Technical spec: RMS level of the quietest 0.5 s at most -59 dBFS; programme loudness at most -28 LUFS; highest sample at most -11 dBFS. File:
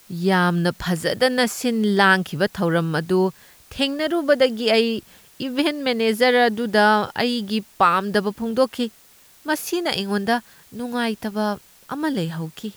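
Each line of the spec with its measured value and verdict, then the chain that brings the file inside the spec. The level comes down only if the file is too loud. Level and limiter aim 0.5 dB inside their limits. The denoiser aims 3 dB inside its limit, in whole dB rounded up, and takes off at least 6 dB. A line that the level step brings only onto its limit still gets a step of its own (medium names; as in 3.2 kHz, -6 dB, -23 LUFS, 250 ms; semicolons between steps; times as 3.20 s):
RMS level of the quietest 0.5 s -51 dBFS: fail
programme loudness -21.0 LUFS: fail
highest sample -4.5 dBFS: fail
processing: noise reduction 6 dB, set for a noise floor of -51 dBFS; trim -7.5 dB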